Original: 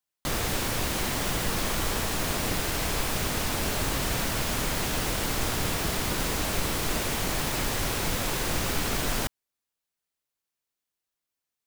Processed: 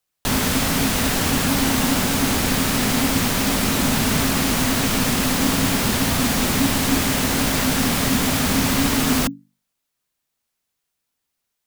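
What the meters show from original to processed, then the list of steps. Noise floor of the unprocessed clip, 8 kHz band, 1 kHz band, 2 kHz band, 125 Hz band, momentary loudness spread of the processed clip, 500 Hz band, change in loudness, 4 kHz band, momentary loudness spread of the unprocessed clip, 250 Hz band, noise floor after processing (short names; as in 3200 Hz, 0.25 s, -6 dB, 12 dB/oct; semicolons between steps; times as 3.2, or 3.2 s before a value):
under -85 dBFS, +8.5 dB, +7.5 dB, +8.0 dB, +8.5 dB, 1 LU, +6.5 dB, +9.0 dB, +8.0 dB, 0 LU, +14.5 dB, -79 dBFS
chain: notches 50/100/150 Hz; frequency shift -280 Hz; gain +8.5 dB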